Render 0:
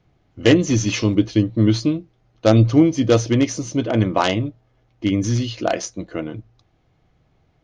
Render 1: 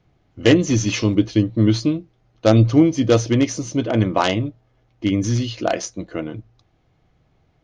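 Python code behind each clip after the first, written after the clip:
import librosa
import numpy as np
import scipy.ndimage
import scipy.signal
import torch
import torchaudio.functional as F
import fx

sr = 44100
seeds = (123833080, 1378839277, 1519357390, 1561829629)

y = x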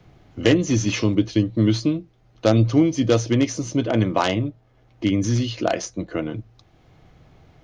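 y = fx.band_squash(x, sr, depth_pct=40)
y = y * 10.0 ** (-2.0 / 20.0)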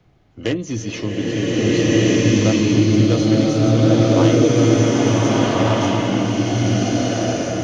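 y = fx.rev_bloom(x, sr, seeds[0], attack_ms=1630, drr_db=-10.0)
y = y * 10.0 ** (-5.0 / 20.0)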